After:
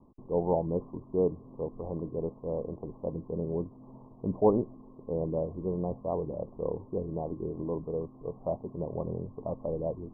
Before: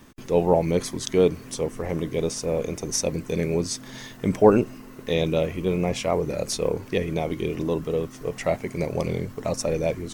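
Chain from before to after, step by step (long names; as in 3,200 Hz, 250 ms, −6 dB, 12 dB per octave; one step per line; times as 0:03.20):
Butterworth low-pass 1,100 Hz 96 dB per octave
level −8 dB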